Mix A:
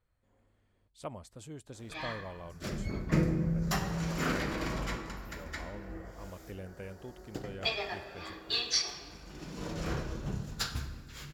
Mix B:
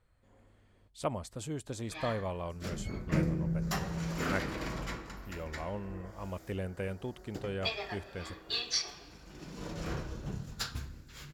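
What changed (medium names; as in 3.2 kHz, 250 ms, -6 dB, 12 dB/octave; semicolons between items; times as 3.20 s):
speech +7.5 dB; background: send -10.5 dB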